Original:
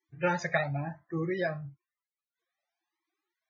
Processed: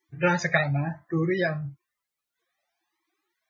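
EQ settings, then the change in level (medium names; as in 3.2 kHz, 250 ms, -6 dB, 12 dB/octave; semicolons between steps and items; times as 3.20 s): dynamic bell 730 Hz, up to -5 dB, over -41 dBFS, Q 0.91; +8.0 dB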